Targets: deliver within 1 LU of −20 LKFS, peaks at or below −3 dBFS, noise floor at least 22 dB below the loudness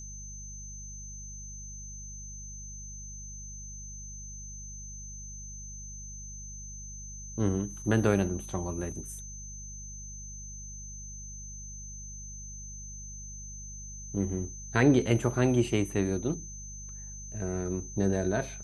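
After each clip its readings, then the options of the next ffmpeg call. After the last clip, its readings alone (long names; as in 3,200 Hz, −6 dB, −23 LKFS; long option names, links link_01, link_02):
mains hum 50 Hz; hum harmonics up to 200 Hz; level of the hum −43 dBFS; interfering tone 6,200 Hz; level of the tone −43 dBFS; integrated loudness −34.0 LKFS; sample peak −9.5 dBFS; target loudness −20.0 LKFS
→ -af "bandreject=frequency=50:width_type=h:width=4,bandreject=frequency=100:width_type=h:width=4,bandreject=frequency=150:width_type=h:width=4,bandreject=frequency=200:width_type=h:width=4"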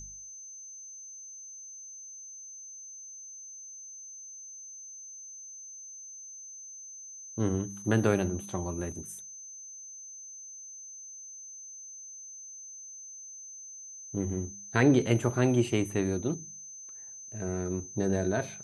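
mains hum none found; interfering tone 6,200 Hz; level of the tone −43 dBFS
→ -af "bandreject=frequency=6200:width=30"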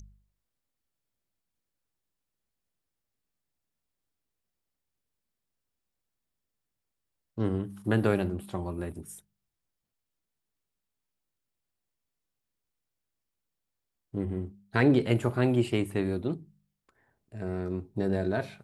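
interfering tone none found; integrated loudness −29.5 LKFS; sample peak −9.5 dBFS; target loudness −20.0 LKFS
→ -af "volume=9.5dB,alimiter=limit=-3dB:level=0:latency=1"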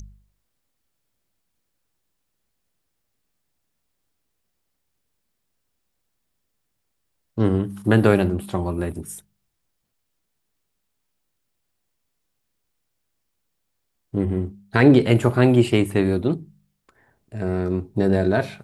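integrated loudness −20.5 LKFS; sample peak −3.0 dBFS; background noise floor −75 dBFS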